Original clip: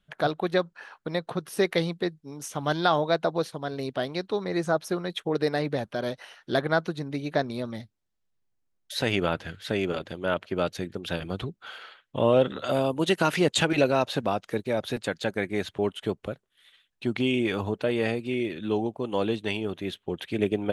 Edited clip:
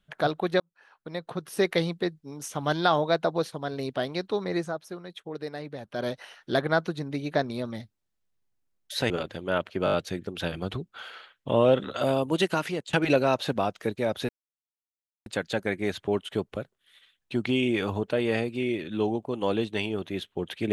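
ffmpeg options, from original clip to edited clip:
-filter_complex "[0:a]asplit=11[a][b][c][d][e][f][g][h][i][j][k];[a]atrim=end=0.6,asetpts=PTS-STARTPTS,afade=t=out:st=0.596:d=0.004:c=hsin[l];[b]atrim=start=0.6:end=4.81,asetpts=PTS-STARTPTS,afade=t=in:d=1.06,afade=t=out:st=3.96:d=0.25:c=qua:silence=0.316228[m];[c]atrim=start=4.81:end=5.76,asetpts=PTS-STARTPTS,volume=-10dB[n];[d]atrim=start=5.76:end=9.102,asetpts=PTS-STARTPTS,afade=t=in:d=0.25:c=qua:silence=0.316228[o];[e]atrim=start=9.858:end=10.632[p];[f]atrim=start=10.608:end=10.632[q];[g]atrim=start=10.608:end=10.632[r];[h]atrim=start=10.608:end=10.632[s];[i]atrim=start=10.608:end=13.61,asetpts=PTS-STARTPTS,afade=t=out:st=2.432:d=0.57:silence=0.0841395[t];[j]atrim=start=13.61:end=14.97,asetpts=PTS-STARTPTS,afade=t=in:d=0.004:c=hsin:silence=0.0841395,afade=t=out:st=1.356:d=0.004:c=hsin,apad=pad_dur=0.97[u];[k]atrim=start=14.97,asetpts=PTS-STARTPTS,afade=t=in:d=0.004:c=hsin[v];[l][m][n][o]concat=n=4:v=0:a=1[w];[w][p]acrossfade=d=0.004:c1=hsin:c2=hsin[x];[x][q]acrossfade=d=0.004:c1=hsin:c2=hsin[y];[y][r]acrossfade=d=0.004:c1=hsin:c2=hsin[z];[z][s]acrossfade=d=0.004:c1=hsin:c2=hsin[aa];[t][u][v]concat=n=3:v=0:a=1[ab];[aa][ab]acrossfade=d=0.004:c1=hsin:c2=hsin"

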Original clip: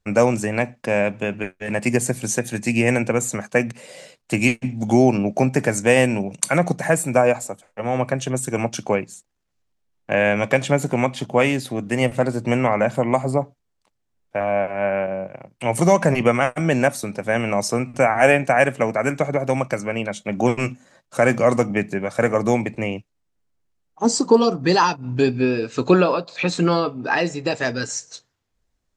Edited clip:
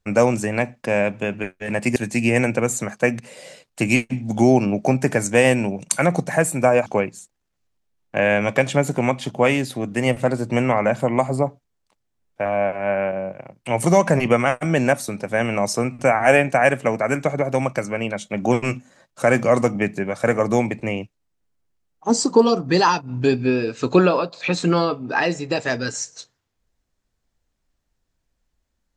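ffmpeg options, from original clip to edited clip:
-filter_complex "[0:a]asplit=3[a][b][c];[a]atrim=end=1.962[d];[b]atrim=start=2.478:end=7.382[e];[c]atrim=start=8.808[f];[d][e]acrossfade=d=0.004:c1=hsin:c2=hsin[g];[g][f]acrossfade=d=0.004:c1=hsin:c2=hsin"

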